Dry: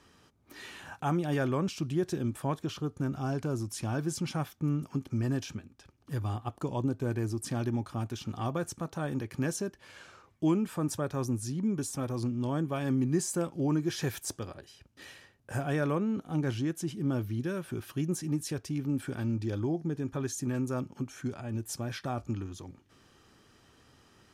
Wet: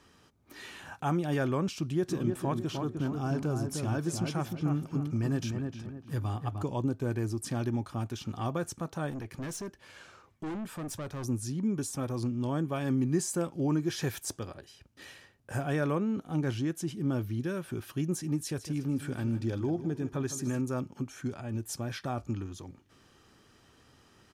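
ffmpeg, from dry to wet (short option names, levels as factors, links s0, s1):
-filter_complex "[0:a]asplit=3[s0][s1][s2];[s0]afade=t=out:st=2.08:d=0.02[s3];[s1]asplit=2[s4][s5];[s5]adelay=305,lowpass=f=1700:p=1,volume=0.596,asplit=2[s6][s7];[s7]adelay=305,lowpass=f=1700:p=1,volume=0.37,asplit=2[s8][s9];[s9]adelay=305,lowpass=f=1700:p=1,volume=0.37,asplit=2[s10][s11];[s11]adelay=305,lowpass=f=1700:p=1,volume=0.37,asplit=2[s12][s13];[s13]adelay=305,lowpass=f=1700:p=1,volume=0.37[s14];[s4][s6][s8][s10][s12][s14]amix=inputs=6:normalize=0,afade=t=in:st=2.08:d=0.02,afade=t=out:st=6.62:d=0.02[s15];[s2]afade=t=in:st=6.62:d=0.02[s16];[s3][s15][s16]amix=inputs=3:normalize=0,asettb=1/sr,asplit=3[s17][s18][s19];[s17]atrim=end=9.104[s20];[s18]atrim=start=9.1:end=11.24,asetpts=PTS-STARTPTS,afade=t=in:d=0.004:c=qsin,afade=t=out:st=2.136:d=0.004:c=qsin,aeval=exprs='(tanh(50.1*val(0)+0.2)-tanh(0.2))/50.1':c=same[s21];[s19]atrim=start=11.236[s22];[s20][s21]acrossfade=d=0.004:c1=hsin:c2=qsin[s23];[s23][s22]acrossfade=d=0.004:c1=qsin:c2=hsin,asettb=1/sr,asplit=3[s24][s25][s26];[s24]atrim=end=18.374[s27];[s25]atrim=start=18.37:end=20.61,asetpts=PTS-STARTPTS,afade=t=in:d=0.004:c=qsin,afade=t=out:st=2.236:d=0.004:c=qsin,aecho=1:1:156|312|468|624:0.224|0.101|0.0453|0.0204,atrim=end_sample=98784[s28];[s26]atrim=start=20.606[s29];[s27][s28]acrossfade=d=0.004:c1=hsin:c2=qsin[s30];[s30][s29]acrossfade=d=0.004:c1=qsin:c2=hsin"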